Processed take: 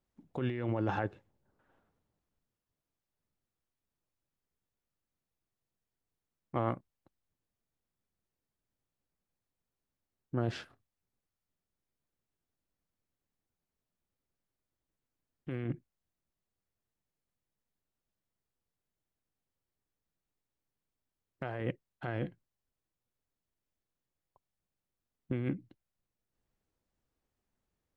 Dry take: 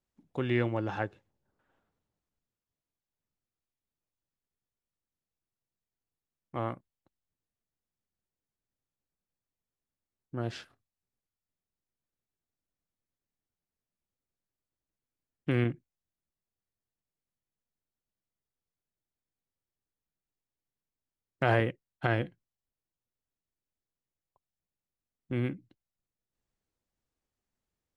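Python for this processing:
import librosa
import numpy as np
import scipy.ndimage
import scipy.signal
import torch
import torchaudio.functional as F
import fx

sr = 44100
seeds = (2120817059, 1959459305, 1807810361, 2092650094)

y = fx.high_shelf(x, sr, hz=2400.0, db=-7.0)
y = fx.over_compress(y, sr, threshold_db=-34.0, ratio=-1.0)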